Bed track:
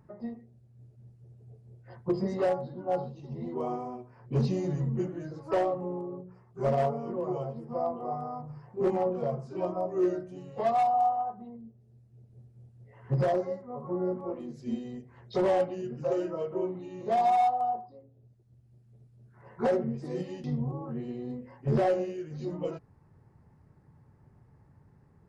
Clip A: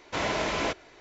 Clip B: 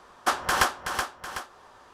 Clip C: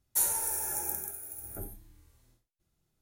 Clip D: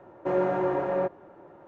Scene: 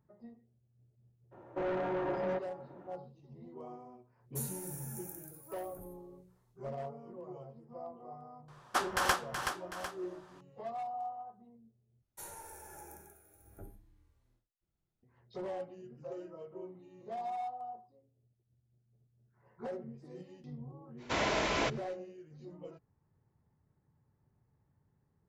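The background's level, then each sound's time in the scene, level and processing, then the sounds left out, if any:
bed track -14.5 dB
1.31 s: add D -4.5 dB, fades 0.02 s + saturation -25.5 dBFS
4.20 s: add C -14 dB
8.48 s: add B -7 dB
12.02 s: replace with C -8 dB + low-pass 1.9 kHz 6 dB/octave
20.97 s: add A -3 dB, fades 0.05 s

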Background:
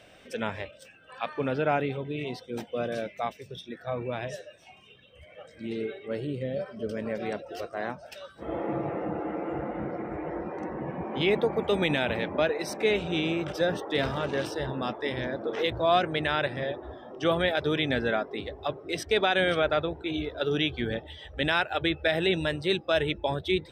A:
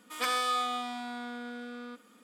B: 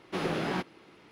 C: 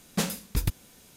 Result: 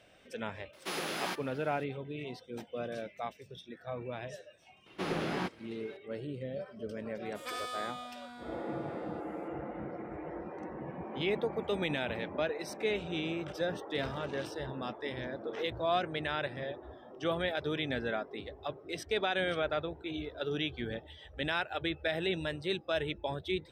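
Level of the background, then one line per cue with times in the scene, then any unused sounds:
background -7.5 dB
0.73 s: add B -4 dB + RIAA curve recording
4.86 s: add B -3 dB
7.25 s: add A -10 dB
not used: C

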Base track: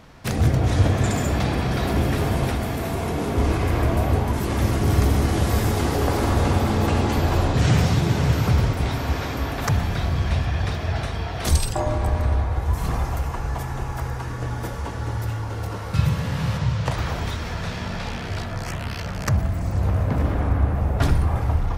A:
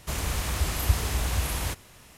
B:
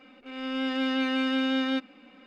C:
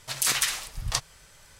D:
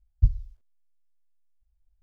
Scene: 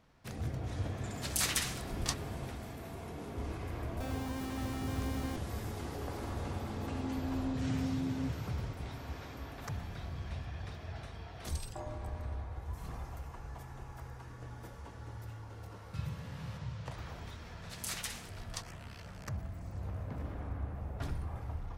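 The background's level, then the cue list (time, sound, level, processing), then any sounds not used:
base track -19 dB
1.14 s: add C -8 dB
3.57 s: add B -11.5 dB + Schmitt trigger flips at -28 dBFS
6.49 s: add B -8 dB + inverse Chebyshev low-pass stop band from 1.9 kHz, stop band 80 dB
17.62 s: add C -15.5 dB
not used: A, D

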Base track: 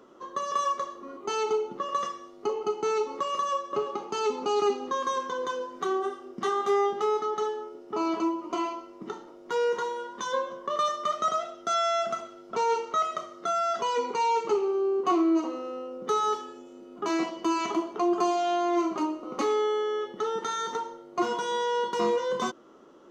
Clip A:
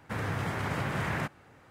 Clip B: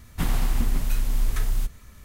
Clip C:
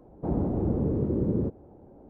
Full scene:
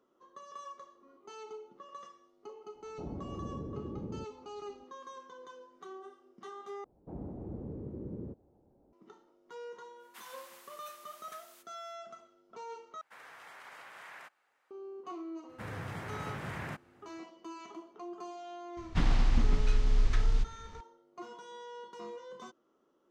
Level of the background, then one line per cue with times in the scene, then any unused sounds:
base track -19 dB
2.75 s: add C -14.5 dB
6.84 s: replace with C -15.5 dB
9.96 s: add B -16.5 dB, fades 0.10 s + high-pass 880 Hz 24 dB/octave
13.01 s: replace with A -14 dB + high-pass 810 Hz
15.49 s: add A -8.5 dB
18.77 s: add B -3 dB + low-pass 5.7 kHz 24 dB/octave

